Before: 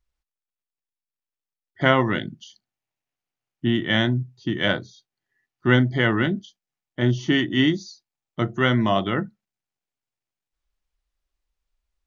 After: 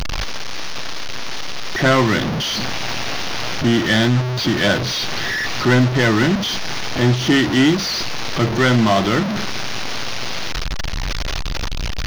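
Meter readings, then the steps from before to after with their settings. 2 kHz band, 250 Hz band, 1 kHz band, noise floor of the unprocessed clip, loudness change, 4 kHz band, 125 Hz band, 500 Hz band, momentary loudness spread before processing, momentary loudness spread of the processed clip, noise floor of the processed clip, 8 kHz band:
+6.0 dB, +6.0 dB, +6.5 dB, below −85 dBFS, +3.5 dB, +9.5 dB, +6.0 dB, +5.5 dB, 10 LU, 12 LU, −22 dBFS, can't be measured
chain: linear delta modulator 32 kbit/s, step −23 dBFS
leveller curve on the samples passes 3
level −3.5 dB

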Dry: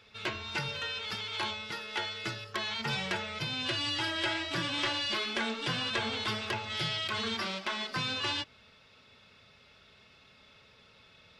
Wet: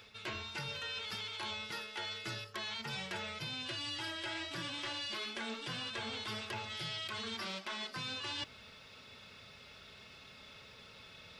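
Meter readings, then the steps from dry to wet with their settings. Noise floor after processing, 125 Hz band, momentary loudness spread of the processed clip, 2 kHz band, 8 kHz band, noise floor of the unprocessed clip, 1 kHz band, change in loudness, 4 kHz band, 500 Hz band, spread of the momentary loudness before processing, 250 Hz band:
−56 dBFS, −7.5 dB, 15 LU, −7.5 dB, −4.5 dB, −60 dBFS, −8.0 dB, −7.0 dB, −6.5 dB, −7.5 dB, 5 LU, −8.0 dB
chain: high-shelf EQ 8,400 Hz +9.5 dB
reversed playback
downward compressor 6 to 1, threshold −43 dBFS, peak gain reduction 15.5 dB
reversed playback
level +3.5 dB

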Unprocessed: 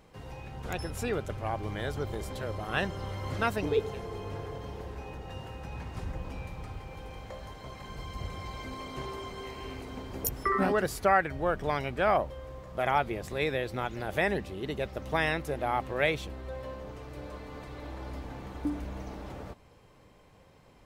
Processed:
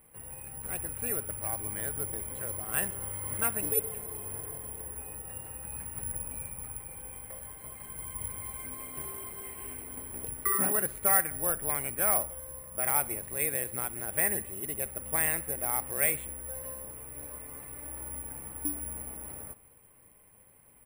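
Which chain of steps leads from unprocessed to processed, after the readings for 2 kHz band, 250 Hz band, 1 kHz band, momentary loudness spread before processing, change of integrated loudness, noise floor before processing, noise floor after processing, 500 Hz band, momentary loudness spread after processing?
−4.5 dB, −7.5 dB, −7.0 dB, 16 LU, +2.0 dB, −58 dBFS, −59 dBFS, −7.5 dB, 15 LU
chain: parametric band 2,300 Hz +9 dB 1.3 octaves
log-companded quantiser 6 bits
high-frequency loss of the air 460 metres
repeating echo 63 ms, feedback 56%, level −20 dB
bad sample-rate conversion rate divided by 4×, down none, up zero stuff
level −7 dB

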